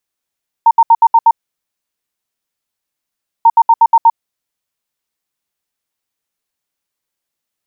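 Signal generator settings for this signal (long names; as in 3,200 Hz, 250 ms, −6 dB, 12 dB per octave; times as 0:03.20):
beeps in groups sine 918 Hz, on 0.05 s, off 0.07 s, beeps 6, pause 2.14 s, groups 2, −3 dBFS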